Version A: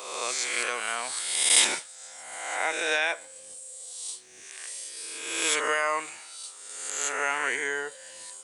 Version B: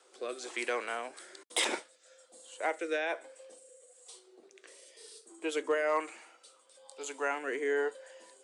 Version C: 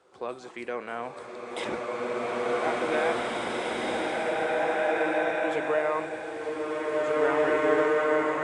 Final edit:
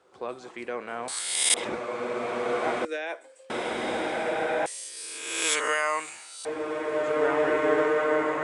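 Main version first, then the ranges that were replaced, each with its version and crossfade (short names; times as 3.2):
C
1.08–1.54 from A
2.85–3.5 from B
4.66–6.45 from A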